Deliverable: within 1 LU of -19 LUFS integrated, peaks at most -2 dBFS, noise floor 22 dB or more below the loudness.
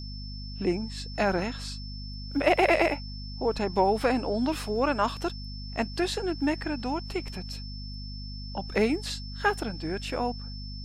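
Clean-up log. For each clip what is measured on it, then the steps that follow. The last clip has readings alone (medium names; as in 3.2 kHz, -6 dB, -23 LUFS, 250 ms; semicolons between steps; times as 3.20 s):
hum 50 Hz; highest harmonic 250 Hz; hum level -36 dBFS; steady tone 5.3 kHz; tone level -43 dBFS; loudness -28.5 LUFS; peak level -10.0 dBFS; loudness target -19.0 LUFS
-> hum notches 50/100/150/200/250 Hz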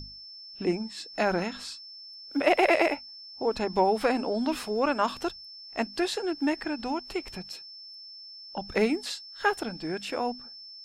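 hum not found; steady tone 5.3 kHz; tone level -43 dBFS
-> band-stop 5.3 kHz, Q 30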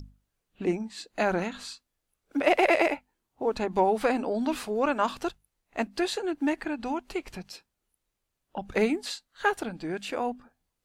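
steady tone not found; loudness -28.5 LUFS; peak level -9.5 dBFS; loudness target -19.0 LUFS
-> trim +9.5 dB; peak limiter -2 dBFS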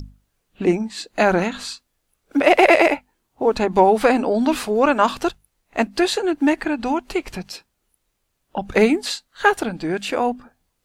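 loudness -19.5 LUFS; peak level -2.0 dBFS; noise floor -73 dBFS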